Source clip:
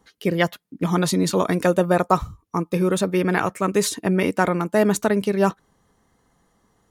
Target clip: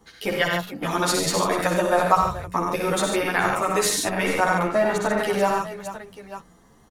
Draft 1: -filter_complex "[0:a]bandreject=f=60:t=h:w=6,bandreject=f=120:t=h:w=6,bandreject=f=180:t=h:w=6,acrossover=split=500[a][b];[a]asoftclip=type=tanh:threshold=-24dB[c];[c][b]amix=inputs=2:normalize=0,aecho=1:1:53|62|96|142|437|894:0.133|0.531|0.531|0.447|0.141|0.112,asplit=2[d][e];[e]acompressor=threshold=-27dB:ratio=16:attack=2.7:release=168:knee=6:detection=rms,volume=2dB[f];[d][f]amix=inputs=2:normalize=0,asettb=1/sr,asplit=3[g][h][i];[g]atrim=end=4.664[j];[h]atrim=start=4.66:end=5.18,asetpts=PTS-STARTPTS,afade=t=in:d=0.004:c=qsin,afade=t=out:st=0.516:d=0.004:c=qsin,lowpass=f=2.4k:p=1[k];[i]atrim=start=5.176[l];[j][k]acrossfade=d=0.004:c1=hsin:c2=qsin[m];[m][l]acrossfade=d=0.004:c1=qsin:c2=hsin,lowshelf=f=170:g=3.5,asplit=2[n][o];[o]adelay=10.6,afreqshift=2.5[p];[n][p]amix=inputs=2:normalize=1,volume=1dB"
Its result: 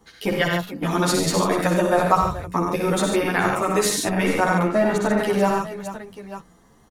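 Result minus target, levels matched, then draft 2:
soft clip: distortion -5 dB
-filter_complex "[0:a]bandreject=f=60:t=h:w=6,bandreject=f=120:t=h:w=6,bandreject=f=180:t=h:w=6,acrossover=split=500[a][b];[a]asoftclip=type=tanh:threshold=-33.5dB[c];[c][b]amix=inputs=2:normalize=0,aecho=1:1:53|62|96|142|437|894:0.133|0.531|0.531|0.447|0.141|0.112,asplit=2[d][e];[e]acompressor=threshold=-27dB:ratio=16:attack=2.7:release=168:knee=6:detection=rms,volume=2dB[f];[d][f]amix=inputs=2:normalize=0,asettb=1/sr,asplit=3[g][h][i];[g]atrim=end=4.664[j];[h]atrim=start=4.66:end=5.18,asetpts=PTS-STARTPTS,afade=t=in:d=0.004:c=qsin,afade=t=out:st=0.516:d=0.004:c=qsin,lowpass=f=2.4k:p=1[k];[i]atrim=start=5.176[l];[j][k]acrossfade=d=0.004:c1=hsin:c2=qsin[m];[m][l]acrossfade=d=0.004:c1=qsin:c2=hsin,lowshelf=f=170:g=3.5,asplit=2[n][o];[o]adelay=10.6,afreqshift=2.5[p];[n][p]amix=inputs=2:normalize=1,volume=1dB"

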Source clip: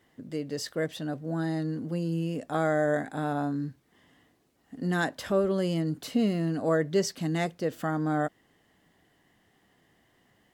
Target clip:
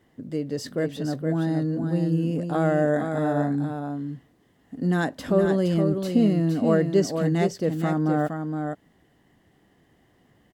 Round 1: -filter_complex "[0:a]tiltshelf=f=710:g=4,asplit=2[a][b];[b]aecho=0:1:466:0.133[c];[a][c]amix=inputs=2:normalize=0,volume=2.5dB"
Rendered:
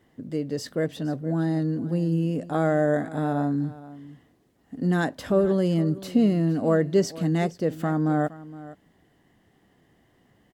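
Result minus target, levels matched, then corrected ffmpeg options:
echo-to-direct -11.5 dB
-filter_complex "[0:a]tiltshelf=f=710:g=4,asplit=2[a][b];[b]aecho=0:1:466:0.501[c];[a][c]amix=inputs=2:normalize=0,volume=2.5dB"

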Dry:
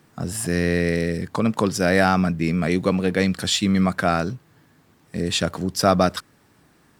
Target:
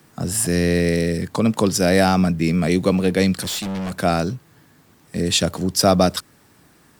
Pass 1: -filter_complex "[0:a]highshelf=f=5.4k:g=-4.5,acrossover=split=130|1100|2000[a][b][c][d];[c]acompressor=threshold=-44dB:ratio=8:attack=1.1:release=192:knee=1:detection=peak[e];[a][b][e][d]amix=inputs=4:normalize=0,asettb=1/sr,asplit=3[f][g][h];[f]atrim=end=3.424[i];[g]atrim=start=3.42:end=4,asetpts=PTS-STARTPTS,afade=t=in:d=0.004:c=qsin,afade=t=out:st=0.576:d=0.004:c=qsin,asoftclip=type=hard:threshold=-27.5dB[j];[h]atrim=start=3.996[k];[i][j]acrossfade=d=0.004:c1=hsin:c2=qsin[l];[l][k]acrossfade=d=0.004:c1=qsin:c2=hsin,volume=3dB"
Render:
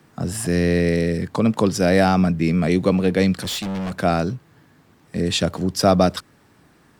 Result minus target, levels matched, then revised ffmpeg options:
8000 Hz band -6.0 dB
-filter_complex "[0:a]highshelf=f=5.4k:g=6,acrossover=split=130|1100|2000[a][b][c][d];[c]acompressor=threshold=-44dB:ratio=8:attack=1.1:release=192:knee=1:detection=peak[e];[a][b][e][d]amix=inputs=4:normalize=0,asettb=1/sr,asplit=3[f][g][h];[f]atrim=end=3.424[i];[g]atrim=start=3.42:end=4,asetpts=PTS-STARTPTS,afade=t=in:d=0.004:c=qsin,afade=t=out:st=0.576:d=0.004:c=qsin,asoftclip=type=hard:threshold=-27.5dB[j];[h]atrim=start=3.996[k];[i][j]acrossfade=d=0.004:c1=hsin:c2=qsin[l];[l][k]acrossfade=d=0.004:c1=qsin:c2=hsin,volume=3dB"

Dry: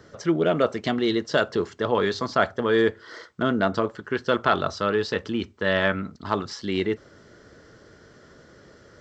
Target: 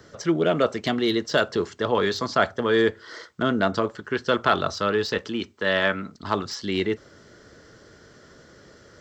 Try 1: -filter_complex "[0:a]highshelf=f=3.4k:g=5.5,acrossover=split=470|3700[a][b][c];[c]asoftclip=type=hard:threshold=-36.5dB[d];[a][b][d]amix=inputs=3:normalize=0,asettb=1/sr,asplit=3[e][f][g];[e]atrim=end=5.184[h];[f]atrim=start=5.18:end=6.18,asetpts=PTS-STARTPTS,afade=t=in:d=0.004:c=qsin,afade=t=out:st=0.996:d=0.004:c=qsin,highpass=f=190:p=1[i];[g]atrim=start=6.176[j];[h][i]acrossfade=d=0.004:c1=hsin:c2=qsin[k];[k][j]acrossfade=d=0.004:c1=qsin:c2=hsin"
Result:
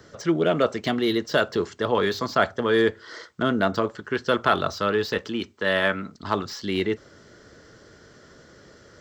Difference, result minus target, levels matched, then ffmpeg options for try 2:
hard clip: distortion +13 dB
-filter_complex "[0:a]highshelf=f=3.4k:g=5.5,acrossover=split=470|3700[a][b][c];[c]asoftclip=type=hard:threshold=-27.5dB[d];[a][b][d]amix=inputs=3:normalize=0,asettb=1/sr,asplit=3[e][f][g];[e]atrim=end=5.184[h];[f]atrim=start=5.18:end=6.18,asetpts=PTS-STARTPTS,afade=t=in:d=0.004:c=qsin,afade=t=out:st=0.996:d=0.004:c=qsin,highpass=f=190:p=1[i];[g]atrim=start=6.176[j];[h][i]acrossfade=d=0.004:c1=hsin:c2=qsin[k];[k][j]acrossfade=d=0.004:c1=qsin:c2=hsin"

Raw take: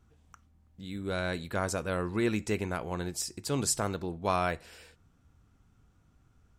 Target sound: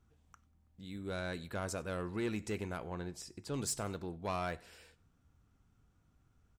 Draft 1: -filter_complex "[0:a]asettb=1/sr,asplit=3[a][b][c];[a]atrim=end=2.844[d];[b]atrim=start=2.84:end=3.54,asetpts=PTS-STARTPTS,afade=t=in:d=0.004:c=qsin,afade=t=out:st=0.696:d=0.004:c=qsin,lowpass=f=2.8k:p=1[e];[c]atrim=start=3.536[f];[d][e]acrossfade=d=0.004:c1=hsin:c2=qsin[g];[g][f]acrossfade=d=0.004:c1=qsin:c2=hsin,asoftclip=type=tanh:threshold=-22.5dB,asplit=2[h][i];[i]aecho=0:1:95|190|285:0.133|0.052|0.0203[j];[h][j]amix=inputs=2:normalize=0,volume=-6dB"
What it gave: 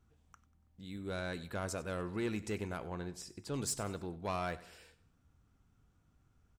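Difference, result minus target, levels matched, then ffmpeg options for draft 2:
echo-to-direct +7 dB
-filter_complex "[0:a]asettb=1/sr,asplit=3[a][b][c];[a]atrim=end=2.844[d];[b]atrim=start=2.84:end=3.54,asetpts=PTS-STARTPTS,afade=t=in:d=0.004:c=qsin,afade=t=out:st=0.696:d=0.004:c=qsin,lowpass=f=2.8k:p=1[e];[c]atrim=start=3.536[f];[d][e]acrossfade=d=0.004:c1=hsin:c2=qsin[g];[g][f]acrossfade=d=0.004:c1=qsin:c2=hsin,asoftclip=type=tanh:threshold=-22.5dB,asplit=2[h][i];[i]aecho=0:1:95|190:0.0596|0.0232[j];[h][j]amix=inputs=2:normalize=0,volume=-6dB"

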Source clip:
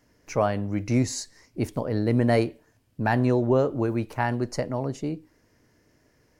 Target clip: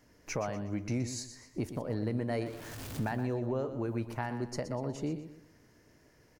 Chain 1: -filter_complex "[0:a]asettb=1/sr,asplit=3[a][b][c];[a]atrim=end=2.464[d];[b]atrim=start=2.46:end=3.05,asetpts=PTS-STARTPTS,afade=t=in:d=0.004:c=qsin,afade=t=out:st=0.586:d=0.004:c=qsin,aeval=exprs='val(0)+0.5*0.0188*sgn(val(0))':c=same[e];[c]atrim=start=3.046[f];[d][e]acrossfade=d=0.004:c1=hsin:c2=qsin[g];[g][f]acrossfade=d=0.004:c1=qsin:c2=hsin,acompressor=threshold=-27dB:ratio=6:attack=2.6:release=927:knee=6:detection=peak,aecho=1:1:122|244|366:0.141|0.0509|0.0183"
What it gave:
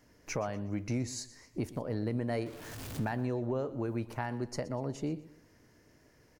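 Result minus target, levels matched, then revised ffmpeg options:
echo-to-direct -6.5 dB
-filter_complex "[0:a]asettb=1/sr,asplit=3[a][b][c];[a]atrim=end=2.464[d];[b]atrim=start=2.46:end=3.05,asetpts=PTS-STARTPTS,afade=t=in:d=0.004:c=qsin,afade=t=out:st=0.586:d=0.004:c=qsin,aeval=exprs='val(0)+0.5*0.0188*sgn(val(0))':c=same[e];[c]atrim=start=3.046[f];[d][e]acrossfade=d=0.004:c1=hsin:c2=qsin[g];[g][f]acrossfade=d=0.004:c1=qsin:c2=hsin,acompressor=threshold=-27dB:ratio=6:attack=2.6:release=927:knee=6:detection=peak,aecho=1:1:122|244|366|488:0.299|0.107|0.0387|0.0139"

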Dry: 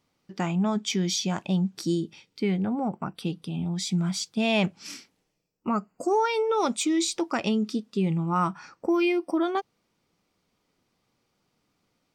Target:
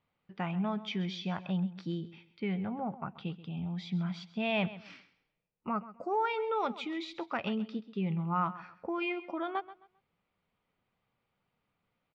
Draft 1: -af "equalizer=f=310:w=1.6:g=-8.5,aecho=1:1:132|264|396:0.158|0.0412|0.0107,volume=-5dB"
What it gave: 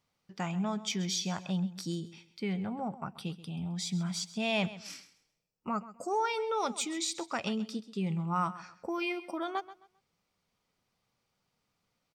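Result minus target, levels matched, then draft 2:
4000 Hz band +5.0 dB
-af "lowpass=f=3.2k:w=0.5412,lowpass=f=3.2k:w=1.3066,equalizer=f=310:w=1.6:g=-8.5,aecho=1:1:132|264|396:0.158|0.0412|0.0107,volume=-5dB"

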